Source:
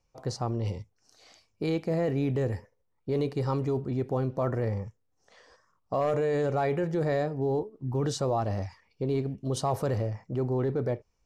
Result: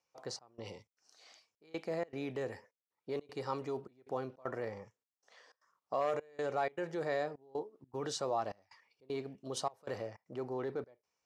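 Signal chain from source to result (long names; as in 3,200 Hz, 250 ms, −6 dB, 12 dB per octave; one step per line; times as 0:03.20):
meter weighting curve A
gate pattern "xxxx..xxx.xx" 155 BPM −24 dB
level −4 dB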